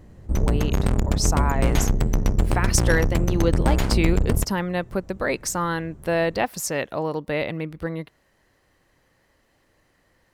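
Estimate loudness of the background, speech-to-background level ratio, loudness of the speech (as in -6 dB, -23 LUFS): -23.5 LUFS, -3.0 dB, -26.5 LUFS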